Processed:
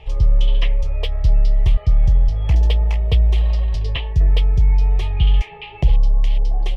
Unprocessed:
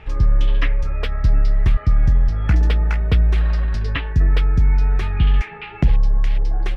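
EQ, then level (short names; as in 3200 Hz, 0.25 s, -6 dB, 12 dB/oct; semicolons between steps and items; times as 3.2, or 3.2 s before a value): bell 3100 Hz +7.5 dB 0.29 oct; fixed phaser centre 610 Hz, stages 4; +1.5 dB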